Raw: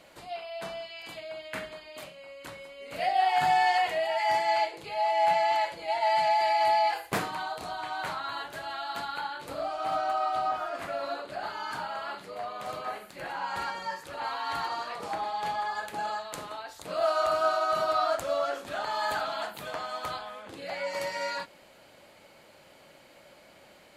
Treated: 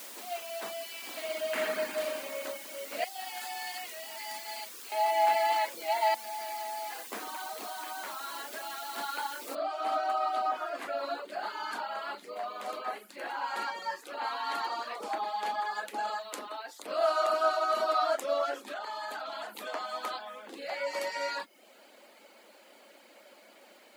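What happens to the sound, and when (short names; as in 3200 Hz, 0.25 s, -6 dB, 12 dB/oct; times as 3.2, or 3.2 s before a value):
1.09–2.37 reverb throw, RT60 2.6 s, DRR -6 dB
3.04–4.92 pre-emphasis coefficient 0.9
6.14–8.98 compressor 5:1, threshold -35 dBFS
9.55 noise floor step -45 dB -69 dB
18.66–19.57 compressor 4:1, threshold -34 dBFS
whole clip: steep high-pass 210 Hz 72 dB/oct; reverb removal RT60 0.51 s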